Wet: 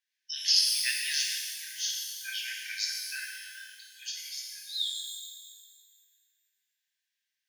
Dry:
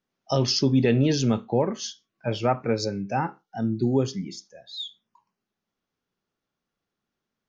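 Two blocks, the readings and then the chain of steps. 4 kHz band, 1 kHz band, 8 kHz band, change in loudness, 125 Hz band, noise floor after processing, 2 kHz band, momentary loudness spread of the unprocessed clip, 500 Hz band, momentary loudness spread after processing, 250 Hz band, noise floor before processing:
+4.0 dB, below −40 dB, can't be measured, −4.5 dB, below −40 dB, −85 dBFS, +3.0 dB, 14 LU, below −40 dB, 19 LU, below −40 dB, below −85 dBFS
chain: linear-phase brick-wall high-pass 1,500 Hz
reverb with rising layers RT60 1.8 s, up +12 semitones, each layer −8 dB, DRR −1.5 dB

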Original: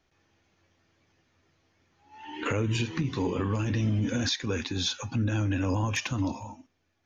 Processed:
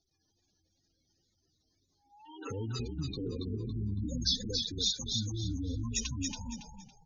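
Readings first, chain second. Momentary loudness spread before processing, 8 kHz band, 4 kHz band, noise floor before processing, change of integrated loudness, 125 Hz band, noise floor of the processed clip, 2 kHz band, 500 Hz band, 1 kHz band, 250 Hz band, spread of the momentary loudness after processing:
7 LU, can't be measured, +0.5 dB, −74 dBFS, −5.5 dB, −8.0 dB, −78 dBFS, −17.0 dB, −9.5 dB, −15.5 dB, −8.5 dB, 12 LU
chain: tape wow and flutter 76 cents
high shelf with overshoot 3,200 Hz +10 dB, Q 1.5
gate on every frequency bin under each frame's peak −10 dB strong
echo with shifted repeats 279 ms, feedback 31%, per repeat −40 Hz, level −4 dB
level −8.5 dB

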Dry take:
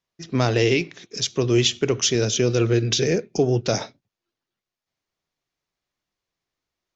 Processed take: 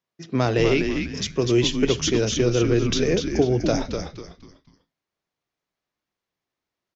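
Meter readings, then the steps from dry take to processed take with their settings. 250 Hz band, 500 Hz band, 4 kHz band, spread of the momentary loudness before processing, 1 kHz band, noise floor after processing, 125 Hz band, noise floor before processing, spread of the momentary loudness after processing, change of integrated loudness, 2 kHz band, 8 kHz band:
+2.0 dB, 0.0 dB, −2.5 dB, 8 LU, +0.5 dB, below −85 dBFS, −1.5 dB, below −85 dBFS, 9 LU, −0.5 dB, −1.0 dB, can't be measured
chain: high-pass filter 110 Hz
high-shelf EQ 3,400 Hz −7 dB
on a send: echo with shifted repeats 247 ms, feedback 34%, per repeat −99 Hz, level −5.5 dB

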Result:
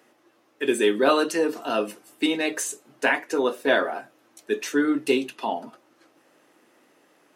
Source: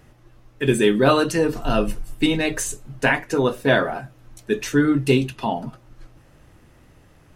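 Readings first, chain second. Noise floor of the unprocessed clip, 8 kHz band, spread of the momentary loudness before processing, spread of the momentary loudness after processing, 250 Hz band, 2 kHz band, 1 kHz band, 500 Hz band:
−53 dBFS, −2.5 dB, 11 LU, 10 LU, −5.0 dB, −2.5 dB, −2.5 dB, −2.5 dB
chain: high-pass filter 270 Hz 24 dB per octave
level −2.5 dB

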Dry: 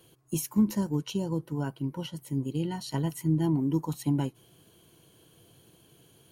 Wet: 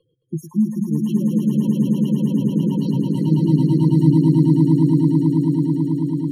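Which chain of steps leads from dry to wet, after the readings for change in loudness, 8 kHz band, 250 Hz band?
+12.5 dB, can't be measured, +14.0 dB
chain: gate on every frequency bin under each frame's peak −10 dB strong
noise reduction from a noise print of the clip's start 13 dB
spectral tilt −2.5 dB per octave
on a send: echo that builds up and dies away 109 ms, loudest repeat 8, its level −3.5 dB

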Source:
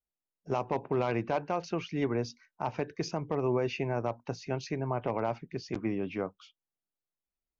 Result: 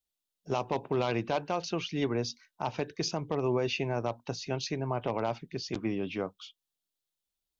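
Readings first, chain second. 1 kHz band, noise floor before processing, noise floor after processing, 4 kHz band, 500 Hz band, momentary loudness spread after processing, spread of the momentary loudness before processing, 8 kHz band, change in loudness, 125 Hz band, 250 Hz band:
0.0 dB, below −85 dBFS, below −85 dBFS, +8.0 dB, 0.0 dB, 7 LU, 7 LU, can't be measured, +0.5 dB, 0.0 dB, 0.0 dB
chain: drawn EQ curve 2,200 Hz 0 dB, 3,500 Hz +11 dB, 5,100 Hz +7 dB

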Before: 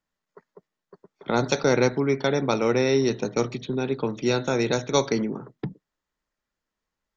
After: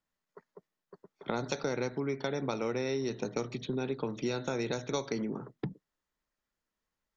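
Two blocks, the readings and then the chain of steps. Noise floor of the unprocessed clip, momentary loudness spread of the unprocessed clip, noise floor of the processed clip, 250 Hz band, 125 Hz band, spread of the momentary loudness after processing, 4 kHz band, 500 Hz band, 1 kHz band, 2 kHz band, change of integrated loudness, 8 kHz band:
below −85 dBFS, 11 LU, below −85 dBFS, −10.0 dB, −10.0 dB, 5 LU, −10.5 dB, −11.0 dB, −10.5 dB, −11.0 dB, −11.0 dB, can't be measured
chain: downward compressor, threshold −26 dBFS, peak gain reduction 10.5 dB
level −3.5 dB

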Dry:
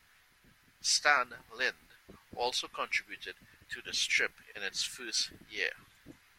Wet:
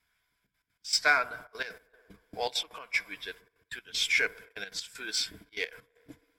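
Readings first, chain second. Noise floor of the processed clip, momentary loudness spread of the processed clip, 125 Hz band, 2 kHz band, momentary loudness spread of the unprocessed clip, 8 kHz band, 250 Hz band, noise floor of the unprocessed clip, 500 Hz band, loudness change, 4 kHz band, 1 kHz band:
−78 dBFS, 18 LU, +1.5 dB, +2.5 dB, 16 LU, −2.0 dB, +1.0 dB, −66 dBFS, +1.5 dB, +1.5 dB, +1.5 dB, +0.5 dB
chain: noise gate −51 dBFS, range −15 dB
EQ curve with evenly spaced ripples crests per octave 1.7, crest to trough 9 dB
delay with a band-pass on its return 63 ms, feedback 73%, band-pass 640 Hz, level −19 dB
in parallel at −6 dB: soft clipping −28.5 dBFS, distortion −7 dB
on the sum: gate pattern "xxxxxx.x.x..x" 194 BPM −12 dB
level −1 dB

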